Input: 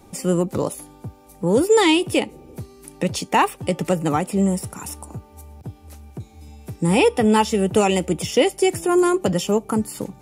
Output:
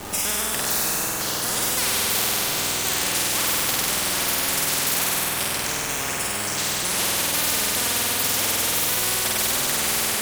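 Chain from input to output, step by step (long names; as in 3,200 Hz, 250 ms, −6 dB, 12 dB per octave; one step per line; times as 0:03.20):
pitch shifter swept by a sawtooth +6.5 semitones, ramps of 748 ms
delay with pitch and tempo change per echo 483 ms, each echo −5 semitones, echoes 2, each echo −6 dB
bit reduction 8 bits
flutter between parallel walls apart 8.4 metres, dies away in 1.5 s
on a send at −10 dB: convolution reverb RT60 5.6 s, pre-delay 55 ms
on the sum: every bin compressed towards the loudest bin 10 to 1
level −4.5 dB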